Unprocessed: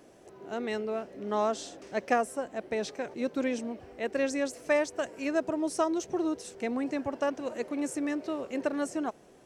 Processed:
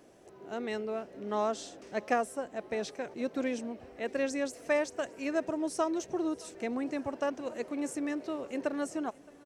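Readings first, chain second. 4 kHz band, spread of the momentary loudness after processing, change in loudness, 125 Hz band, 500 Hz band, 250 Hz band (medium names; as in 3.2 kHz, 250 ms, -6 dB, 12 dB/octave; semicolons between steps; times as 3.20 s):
-2.5 dB, 8 LU, -2.5 dB, -2.5 dB, -2.5 dB, -2.5 dB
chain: feedback delay 617 ms, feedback 60%, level -24 dB; trim -2.5 dB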